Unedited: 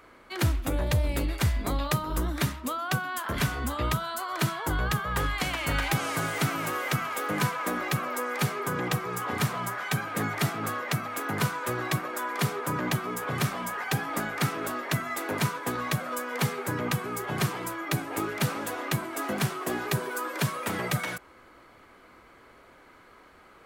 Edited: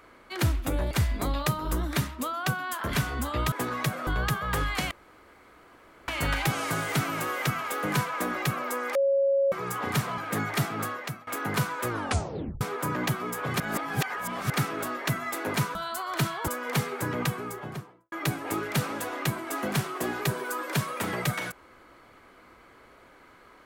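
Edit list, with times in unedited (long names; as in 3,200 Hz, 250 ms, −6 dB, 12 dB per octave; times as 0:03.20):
0:00.91–0:01.36: remove
0:03.97–0:04.70: swap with 0:15.59–0:16.14
0:05.54: splice in room tone 1.17 s
0:08.41–0:08.98: beep over 551 Hz −20 dBFS
0:09.64–0:10.02: remove
0:10.67–0:11.11: fade out, to −21 dB
0:11.72: tape stop 0.73 s
0:13.44–0:14.34: reverse
0:16.88–0:17.78: fade out and dull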